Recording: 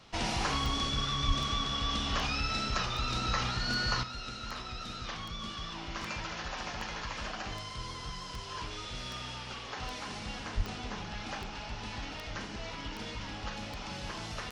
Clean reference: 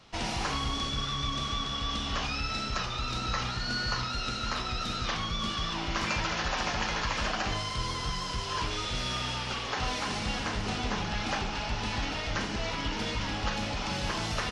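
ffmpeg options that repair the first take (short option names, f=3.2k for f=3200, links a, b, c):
-filter_complex "[0:a]adeclick=t=4,asplit=3[a][b][c];[a]afade=t=out:st=1.27:d=0.02[d];[b]highpass=f=140:w=0.5412,highpass=f=140:w=1.3066,afade=t=in:st=1.27:d=0.02,afade=t=out:st=1.39:d=0.02[e];[c]afade=t=in:st=1.39:d=0.02[f];[d][e][f]amix=inputs=3:normalize=0,asplit=3[g][h][i];[g]afade=t=out:st=10.56:d=0.02[j];[h]highpass=f=140:w=0.5412,highpass=f=140:w=1.3066,afade=t=in:st=10.56:d=0.02,afade=t=out:st=10.68:d=0.02[k];[i]afade=t=in:st=10.68:d=0.02[l];[j][k][l]amix=inputs=3:normalize=0,asetnsamples=n=441:p=0,asendcmd='4.03 volume volume 8dB',volume=0dB"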